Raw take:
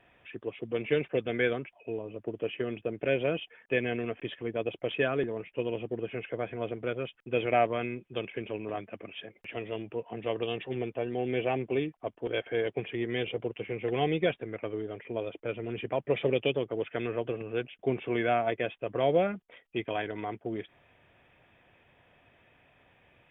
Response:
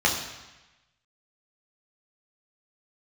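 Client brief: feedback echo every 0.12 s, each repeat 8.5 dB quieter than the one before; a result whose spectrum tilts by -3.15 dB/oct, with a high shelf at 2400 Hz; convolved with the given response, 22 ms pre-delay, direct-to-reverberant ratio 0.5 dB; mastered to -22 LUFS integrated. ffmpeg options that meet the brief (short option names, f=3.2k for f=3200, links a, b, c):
-filter_complex "[0:a]highshelf=f=2.4k:g=9,aecho=1:1:120|240|360|480:0.376|0.143|0.0543|0.0206,asplit=2[a][b];[1:a]atrim=start_sample=2205,adelay=22[c];[b][c]afir=irnorm=-1:irlink=0,volume=-16dB[d];[a][d]amix=inputs=2:normalize=0,volume=6dB"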